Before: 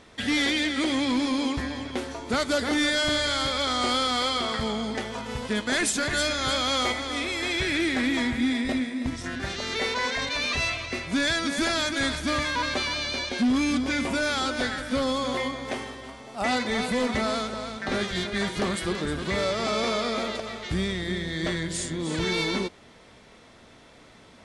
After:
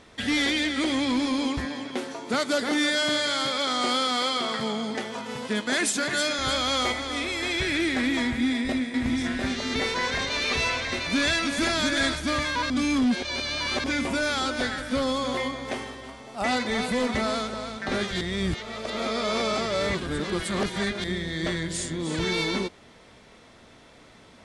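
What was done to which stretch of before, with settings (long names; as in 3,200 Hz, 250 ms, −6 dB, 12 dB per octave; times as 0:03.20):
0:01.65–0:06.39: high-pass filter 140 Hz 24 dB per octave
0:08.24–0:12.14: single-tap delay 699 ms −3.5 dB
0:12.70–0:13.84: reverse
0:18.21–0:21.04: reverse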